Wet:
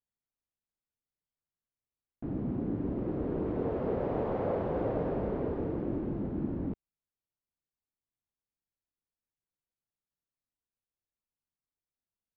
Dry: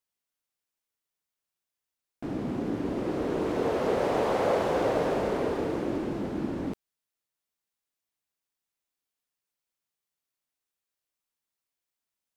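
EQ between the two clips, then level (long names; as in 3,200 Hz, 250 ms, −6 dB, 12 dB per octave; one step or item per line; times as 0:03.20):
head-to-tape spacing loss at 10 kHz 43 dB
low-shelf EQ 230 Hz +11 dB
−6.0 dB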